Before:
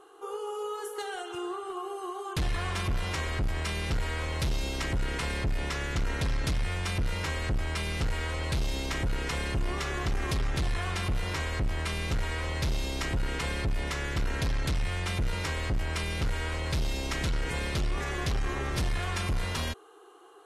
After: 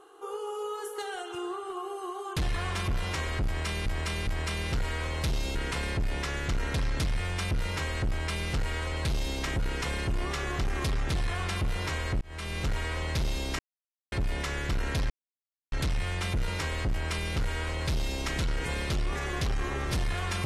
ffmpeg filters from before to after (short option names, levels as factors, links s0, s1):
-filter_complex "[0:a]asplit=8[s0][s1][s2][s3][s4][s5][s6][s7];[s0]atrim=end=3.862[s8];[s1]atrim=start=3.448:end=3.862[s9];[s2]atrim=start=3.448:end=4.732[s10];[s3]atrim=start=5.018:end=11.68,asetpts=PTS-STARTPTS,afade=t=out:st=6.658:d=0.004:c=hsin[s11];[s4]atrim=start=11.68:end=13.06,asetpts=PTS-STARTPTS,afade=t=in:d=0.54:c=qsin,afade=t=out:st=1.376:d=0.004:c=hsin[s12];[s5]atrim=start=13.06:end=13.59,asetpts=PTS-STARTPTS,volume=0[s13];[s6]atrim=start=13.59:end=14.57,asetpts=PTS-STARTPTS,afade=t=in:d=0.004:c=hsin,afade=t=out:st=0.976:d=0.004:c=hsin,apad=pad_dur=0.62[s14];[s7]atrim=start=14.57,asetpts=PTS-STARTPTS,afade=t=in:d=0.004:c=hsin[s15];[s8][s9]acrossfade=d=0.004:c1=hsin:c2=hsin[s16];[s16][s10]acrossfade=d=0.004:c1=hsin:c2=hsin[s17];[s11][s12][s13][s14][s15]concat=n=5:v=0:a=1[s18];[s17][s18]acrossfade=d=0.004:c1=hsin:c2=hsin"